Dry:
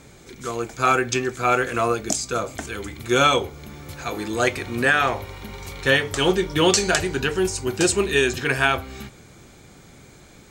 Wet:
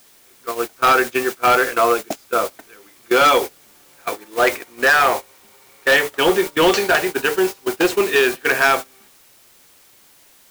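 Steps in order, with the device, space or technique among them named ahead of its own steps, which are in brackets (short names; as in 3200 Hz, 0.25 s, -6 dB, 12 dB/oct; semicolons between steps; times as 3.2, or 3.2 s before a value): aircraft radio (BPF 380–2600 Hz; hard clip -16.5 dBFS, distortion -13 dB; white noise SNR 12 dB; gate -28 dBFS, range -20 dB); gain +7.5 dB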